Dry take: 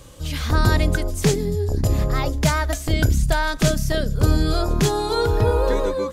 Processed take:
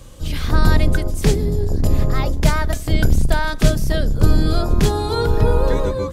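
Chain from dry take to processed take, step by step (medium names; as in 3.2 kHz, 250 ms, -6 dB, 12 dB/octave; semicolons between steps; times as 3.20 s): octave divider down 2 oct, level +4 dB; dynamic bell 6.7 kHz, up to -4 dB, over -44 dBFS, Q 2.6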